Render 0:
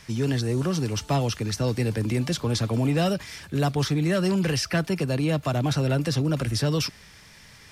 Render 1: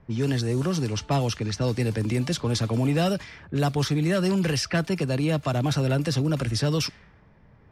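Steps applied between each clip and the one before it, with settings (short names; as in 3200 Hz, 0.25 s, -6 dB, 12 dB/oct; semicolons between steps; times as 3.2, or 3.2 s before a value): low-pass opened by the level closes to 660 Hz, open at -20.5 dBFS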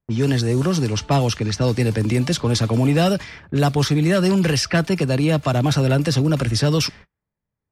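gate -45 dBFS, range -35 dB; gain +6 dB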